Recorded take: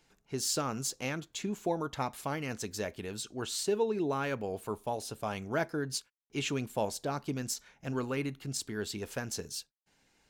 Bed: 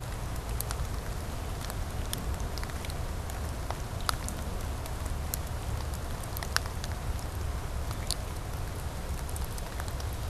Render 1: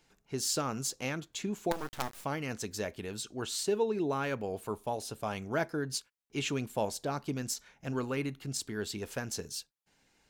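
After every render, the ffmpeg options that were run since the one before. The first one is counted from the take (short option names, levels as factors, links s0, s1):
-filter_complex "[0:a]asettb=1/sr,asplit=3[s0][s1][s2];[s0]atrim=end=1.714[s3];[s1]atrim=start=1.71:end=2.25,asetpts=PTS-STARTPTS,afade=t=in:d=0.004:c=qsin,afade=t=out:st=0.536:d=0.004:c=qsin,acrusher=bits=5:dc=4:mix=0:aa=0.000001[s4];[s2]atrim=start=2.246[s5];[s3][s4]acrossfade=d=0.004:c1=hsin:c2=qsin[s6];[s6][s5]acrossfade=d=0.004:c1=qsin:c2=hsin"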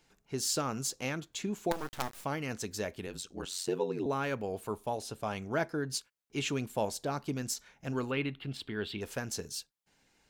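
-filter_complex "[0:a]asettb=1/sr,asplit=3[s0][s1][s2];[s0]atrim=end=3.064[s3];[s1]atrim=start=3.06:end=4.06,asetpts=PTS-STARTPTS,afade=t=in:d=0.004:c=qsin,afade=t=out:st=0.996:d=0.004:c=qsin,aeval=exprs='val(0)*sin(2*PI*45*n/s)':c=same[s4];[s2]atrim=start=4.056[s5];[s3][s4]acrossfade=d=0.004:c1=hsin:c2=qsin[s6];[s6][s5]acrossfade=d=0.004:c1=qsin:c2=hsin,asettb=1/sr,asplit=3[s7][s8][s9];[s7]atrim=end=4.984[s10];[s8]atrim=start=4.98:end=5.9,asetpts=PTS-STARTPTS,afade=t=in:d=0.004:c=qsin,afade=t=out:st=0.916:d=0.004:c=qsin,highshelf=f=11000:g=-6.5[s11];[s9]atrim=start=5.896[s12];[s10][s11]acrossfade=d=0.004:c1=hsin:c2=qsin[s13];[s13][s12]acrossfade=d=0.004:c1=qsin:c2=hsin,asettb=1/sr,asplit=3[s14][s15][s16];[s14]atrim=end=8.114[s17];[s15]atrim=start=8.11:end=9.01,asetpts=PTS-STARTPTS,afade=t=in:d=0.004:c=qsin,afade=t=out:st=0.896:d=0.004:c=qsin,highshelf=f=4600:t=q:w=3:g=-12.5[s18];[s16]atrim=start=9.006[s19];[s17][s18]acrossfade=d=0.004:c1=hsin:c2=qsin[s20];[s20][s19]acrossfade=d=0.004:c1=qsin:c2=hsin"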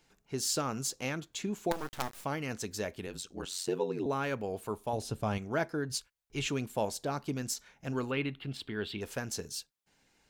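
-filter_complex "[0:a]asettb=1/sr,asplit=3[s0][s1][s2];[s0]atrim=end=4.934[s3];[s1]atrim=start=4.93:end=5.38,asetpts=PTS-STARTPTS,afade=t=in:d=0.004:c=qsin,afade=t=out:st=0.446:d=0.004:c=qsin,lowshelf=f=240:g=11.5[s4];[s2]atrim=start=5.376[s5];[s3][s4]acrossfade=d=0.004:c1=hsin:c2=qsin[s6];[s6][s5]acrossfade=d=0.004:c1=qsin:c2=hsin,asplit=3[s7][s8][s9];[s7]afade=t=out:st=5.89:d=0.02[s10];[s8]asubboost=boost=6:cutoff=84,afade=t=in:st=5.89:d=0.02,afade=t=out:st=6.46:d=0.02[s11];[s9]afade=t=in:st=6.46:d=0.02[s12];[s10][s11][s12]amix=inputs=3:normalize=0"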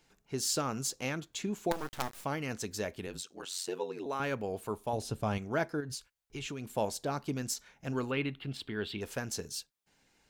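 -filter_complex "[0:a]asettb=1/sr,asplit=3[s0][s1][s2];[s0]atrim=end=3.224[s3];[s1]atrim=start=3.22:end=4.2,asetpts=PTS-STARTPTS,afade=t=in:d=0.004:c=qsin,afade=t=out:st=0.976:d=0.004:c=qsin,highpass=f=590:p=1[s4];[s2]atrim=start=4.196[s5];[s3][s4]acrossfade=d=0.004:c1=hsin:c2=qsin[s6];[s6][s5]acrossfade=d=0.004:c1=qsin:c2=hsin,asettb=1/sr,asplit=3[s7][s8][s9];[s7]atrim=end=5.804[s10];[s8]atrim=start=5.8:end=6.7,asetpts=PTS-STARTPTS,afade=t=in:d=0.004:c=qsin,afade=t=out:st=0.896:d=0.004:c=qsin,acompressor=threshold=0.0158:ratio=6:attack=3.2:release=140:knee=1:detection=peak[s11];[s9]atrim=start=6.696[s12];[s10][s11]acrossfade=d=0.004:c1=hsin:c2=qsin[s13];[s13][s12]acrossfade=d=0.004:c1=qsin:c2=hsin"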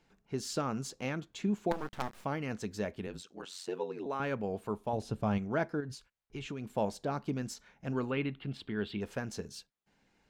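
-af "lowpass=f=2300:p=1,equalizer=f=200:t=o:w=0.26:g=6"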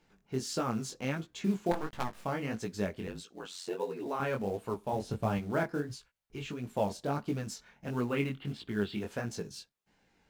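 -filter_complex "[0:a]asplit=2[s0][s1];[s1]acrusher=bits=4:mode=log:mix=0:aa=0.000001,volume=0.631[s2];[s0][s2]amix=inputs=2:normalize=0,flanger=delay=16.5:depth=7:speed=1.5"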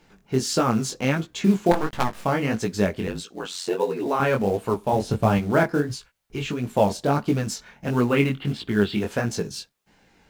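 -af "volume=3.76"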